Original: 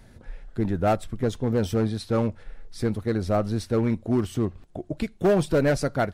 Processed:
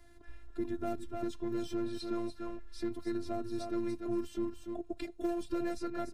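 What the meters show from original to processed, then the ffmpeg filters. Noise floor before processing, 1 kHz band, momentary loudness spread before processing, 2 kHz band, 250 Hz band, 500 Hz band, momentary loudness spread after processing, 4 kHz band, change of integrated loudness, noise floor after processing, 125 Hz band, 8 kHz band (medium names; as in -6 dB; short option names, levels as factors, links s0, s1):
-51 dBFS, -13.0 dB, 9 LU, -16.0 dB, -10.0 dB, -13.0 dB, 6 LU, -10.5 dB, -12.5 dB, -53 dBFS, -23.0 dB, -13.5 dB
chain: -filter_complex "[0:a]afftfilt=real='hypot(re,im)*cos(PI*b)':imag='0':win_size=512:overlap=0.75,aecho=1:1:291:0.355,acrossover=split=87|340|5700[s0][s1][s2][s3];[s0]acompressor=threshold=0.0141:ratio=4[s4];[s1]acompressor=threshold=0.0251:ratio=4[s5];[s2]acompressor=threshold=0.0141:ratio=4[s6];[s3]acompressor=threshold=0.00158:ratio=4[s7];[s4][s5][s6][s7]amix=inputs=4:normalize=0,volume=0.668"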